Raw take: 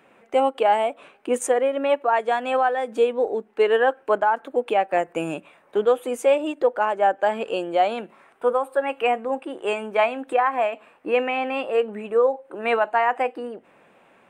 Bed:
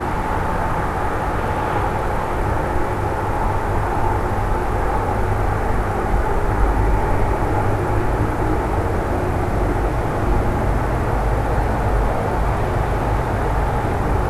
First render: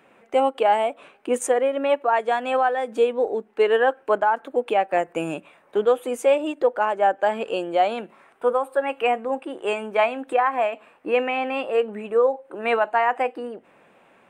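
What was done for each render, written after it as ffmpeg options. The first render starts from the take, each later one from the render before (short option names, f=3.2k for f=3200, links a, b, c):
-af anull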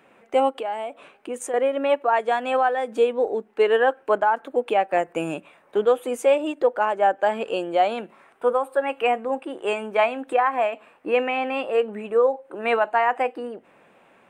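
-filter_complex "[0:a]asettb=1/sr,asplit=3[a][b][c];[a]atrim=end=0.594[d];[b]atrim=start=0.59:end=1.54,asetpts=PTS-STARTPTS,afade=t=in:d=0.004:c=qsin,afade=t=out:st=0.946:d=0.004:c=qsin,acompressor=threshold=-33dB:ratio=2:attack=3.2:release=140:knee=1:detection=peak[e];[c]atrim=start=1.536[f];[d][e]acrossfade=d=0.004:c1=hsin:c2=qsin[g];[g][f]acrossfade=d=0.004:c1=qsin:c2=hsin"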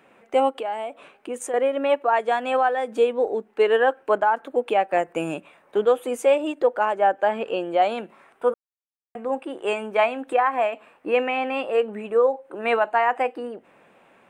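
-filter_complex "[0:a]asettb=1/sr,asplit=3[a][b][c];[a]atrim=end=6.954[d];[b]atrim=start=6.95:end=7.82,asetpts=PTS-STARTPTS,afade=t=in:d=0.004:c=qsin,afade=t=out:st=0.866:d=0.004:c=qsin,acrossover=split=3900[e][f];[f]acompressor=threshold=-58dB:ratio=4:attack=1:release=60[g];[e][g]amix=inputs=2:normalize=0[h];[c]atrim=start=7.816[i];[d][h]acrossfade=d=0.004:c1=hsin:c2=qsin[j];[j][i]acrossfade=d=0.004:c1=qsin:c2=hsin,asplit=3[k][l][m];[k]atrim=end=8.54,asetpts=PTS-STARTPTS,afade=t=out:st=8.536:d=0.004:c=hsin[n];[l]atrim=start=8.54:end=9.15,asetpts=PTS-STARTPTS,volume=0[o];[m]atrim=start=9.15,asetpts=PTS-STARTPTS,afade=t=in:d=0.004:c=hsin[p];[n][o][p]concat=n=3:v=0:a=1"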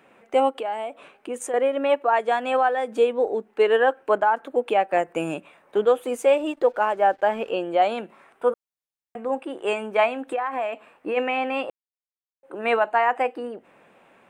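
-filter_complex "[0:a]asettb=1/sr,asplit=3[a][b][c];[a]atrim=end=6.004[d];[b]atrim=start=6:end=7.5,asetpts=PTS-STARTPTS,afade=t=in:d=0.004:c=qsin,afade=t=out:st=1.496:d=0.004:c=qsin,aeval=exprs='sgn(val(0))*max(abs(val(0))-0.00188,0)':c=same[e];[c]atrim=start=7.496[f];[d][e]acrossfade=d=0.004:c1=hsin:c2=qsin[g];[g][f]acrossfade=d=0.004:c1=qsin:c2=hsin,asplit=3[h][i][j];[h]afade=t=out:st=10.23:d=0.02[k];[i]acompressor=threshold=-22dB:ratio=6:attack=3.2:release=140:knee=1:detection=peak,afade=t=in:st=10.23:d=0.02,afade=t=out:st=11.16:d=0.02[l];[j]afade=t=in:st=11.16:d=0.02[m];[k][l][m]amix=inputs=3:normalize=0,asplit=3[n][o][p];[n]atrim=end=11.7,asetpts=PTS-STARTPTS,afade=t=out:st=11.696:d=0.004:c=hsin[q];[o]atrim=start=11.7:end=12.43,asetpts=PTS-STARTPTS,volume=0[r];[p]atrim=start=12.43,asetpts=PTS-STARTPTS,afade=t=in:d=0.004:c=hsin[s];[q][r][s]concat=n=3:v=0:a=1"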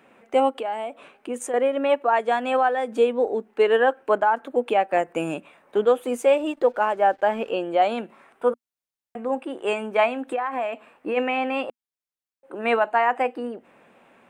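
-af "equalizer=f=240:t=o:w=0.26:g=5"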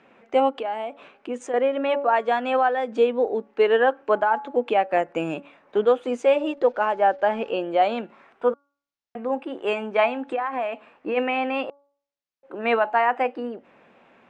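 -af "lowpass=f=6.1k:w=0.5412,lowpass=f=6.1k:w=1.3066,bandreject=f=282.9:t=h:w=4,bandreject=f=565.8:t=h:w=4,bandreject=f=848.7:t=h:w=4,bandreject=f=1.1316k:t=h:w=4,bandreject=f=1.4145k:t=h:w=4"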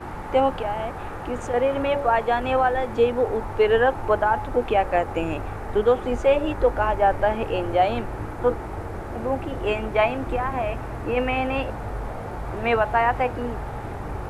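-filter_complex "[1:a]volume=-12.5dB[a];[0:a][a]amix=inputs=2:normalize=0"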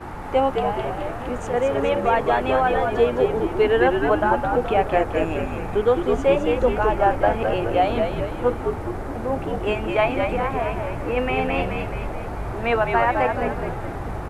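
-filter_complex "[0:a]asplit=8[a][b][c][d][e][f][g][h];[b]adelay=211,afreqshift=-71,volume=-4.5dB[i];[c]adelay=422,afreqshift=-142,volume=-10.3dB[j];[d]adelay=633,afreqshift=-213,volume=-16.2dB[k];[e]adelay=844,afreqshift=-284,volume=-22dB[l];[f]adelay=1055,afreqshift=-355,volume=-27.9dB[m];[g]adelay=1266,afreqshift=-426,volume=-33.7dB[n];[h]adelay=1477,afreqshift=-497,volume=-39.6dB[o];[a][i][j][k][l][m][n][o]amix=inputs=8:normalize=0"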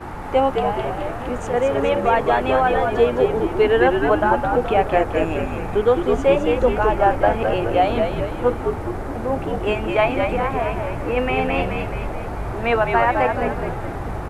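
-af "volume=2dB"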